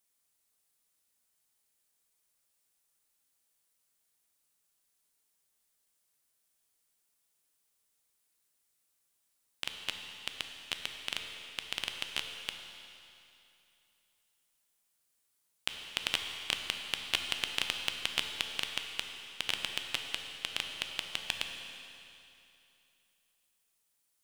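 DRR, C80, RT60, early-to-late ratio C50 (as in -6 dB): 4.0 dB, 5.5 dB, 2.8 s, 4.5 dB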